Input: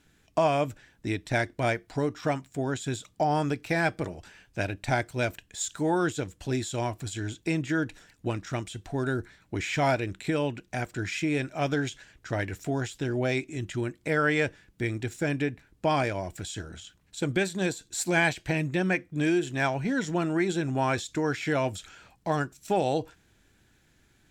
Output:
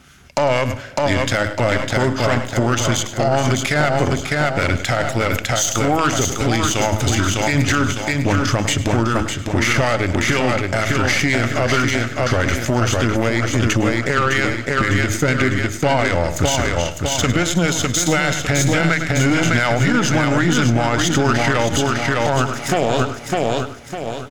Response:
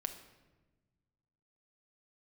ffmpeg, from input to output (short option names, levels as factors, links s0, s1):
-filter_complex "[0:a]highpass=41,equalizer=f=370:w=1.1:g=-5,bandreject=f=60:t=h:w=6,bandreject=f=120:t=h:w=6,bandreject=f=180:t=h:w=6,bandreject=f=240:t=h:w=6,bandreject=f=300:t=h:w=6,bandreject=f=360:t=h:w=6,acompressor=threshold=0.0316:ratio=12,aeval=exprs='0.0944*(cos(1*acos(clip(val(0)/0.0944,-1,1)))-cos(1*PI/2))+0.00668*(cos(4*acos(clip(val(0)/0.0944,-1,1)))-cos(4*PI/2))+0.00596*(cos(7*acos(clip(val(0)/0.0944,-1,1)))-cos(7*PI/2))':c=same,asetrate=39289,aresample=44100,atempo=1.12246,acrossover=split=1100[s0][s1];[s0]aeval=exprs='val(0)*(1-0.5/2+0.5/2*cos(2*PI*4.2*n/s))':c=same[s2];[s1]aeval=exprs='val(0)*(1-0.5/2-0.5/2*cos(2*PI*4.2*n/s))':c=same[s3];[s2][s3]amix=inputs=2:normalize=0,aecho=1:1:604|1208|1812|2416|3020:0.501|0.2|0.0802|0.0321|0.0128,asplit=2[s4][s5];[1:a]atrim=start_sample=2205,adelay=102[s6];[s5][s6]afir=irnorm=-1:irlink=0,volume=0.188[s7];[s4][s7]amix=inputs=2:normalize=0,alimiter=level_in=37.6:limit=0.891:release=50:level=0:latency=1,volume=0.501"